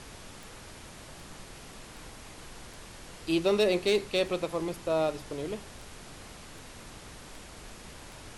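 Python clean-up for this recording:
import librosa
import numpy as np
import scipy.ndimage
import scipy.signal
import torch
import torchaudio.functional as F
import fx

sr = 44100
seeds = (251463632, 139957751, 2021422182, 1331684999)

y = fx.fix_declip(x, sr, threshold_db=-17.5)
y = fx.fix_declick_ar(y, sr, threshold=10.0)
y = fx.noise_reduce(y, sr, print_start_s=0.58, print_end_s=1.08, reduce_db=27.0)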